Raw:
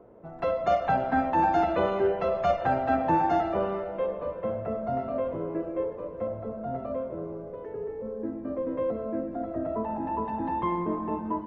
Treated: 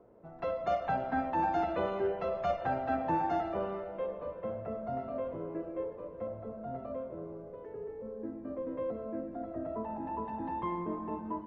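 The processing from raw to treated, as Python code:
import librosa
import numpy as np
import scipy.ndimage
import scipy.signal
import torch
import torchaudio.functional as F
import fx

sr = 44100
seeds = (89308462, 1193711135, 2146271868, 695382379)

y = scipy.signal.sosfilt(scipy.signal.butter(6, 7000.0, 'lowpass', fs=sr, output='sos'), x)
y = F.gain(torch.from_numpy(y), -7.0).numpy()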